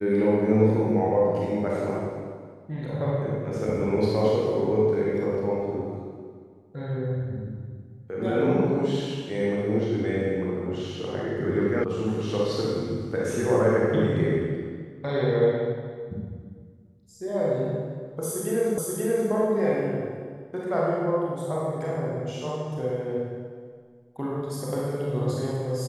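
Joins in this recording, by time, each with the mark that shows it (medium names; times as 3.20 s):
11.84 s: sound stops dead
18.78 s: repeat of the last 0.53 s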